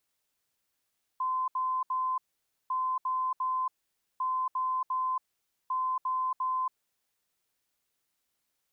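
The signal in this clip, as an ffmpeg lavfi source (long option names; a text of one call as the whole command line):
ffmpeg -f lavfi -i "aevalsrc='0.0447*sin(2*PI*1030*t)*clip(min(mod(mod(t,1.5),0.35),0.28-mod(mod(t,1.5),0.35))/0.005,0,1)*lt(mod(t,1.5),1.05)':duration=6:sample_rate=44100" out.wav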